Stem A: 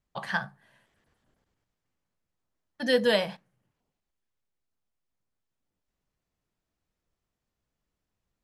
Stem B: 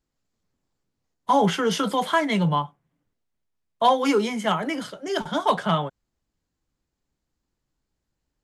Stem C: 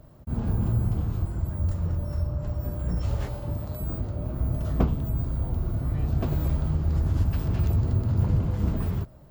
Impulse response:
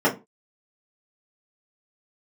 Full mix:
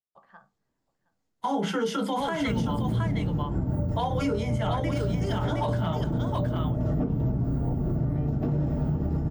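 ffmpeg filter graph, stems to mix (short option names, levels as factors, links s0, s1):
-filter_complex "[0:a]bandpass=f=430:t=q:w=0.95:csg=0,volume=0.133,asplit=2[s0][s1];[s1]volume=0.0794[s2];[1:a]adelay=150,volume=0.631,asplit=3[s3][s4][s5];[s4]volume=0.106[s6];[s5]volume=0.596[s7];[2:a]lowshelf=f=230:g=7,acompressor=threshold=0.112:ratio=6,adelay=2200,volume=0.708,asplit=2[s8][s9];[s9]volume=0.335[s10];[s0][s8]amix=inputs=2:normalize=0,equalizer=f=1200:t=o:w=0.35:g=10.5,acompressor=threshold=0.0501:ratio=6,volume=1[s11];[3:a]atrim=start_sample=2205[s12];[s6][s10]amix=inputs=2:normalize=0[s13];[s13][s12]afir=irnorm=-1:irlink=0[s14];[s2][s7]amix=inputs=2:normalize=0,aecho=0:1:717:1[s15];[s3][s11][s14][s15]amix=inputs=4:normalize=0,alimiter=limit=0.119:level=0:latency=1:release=138"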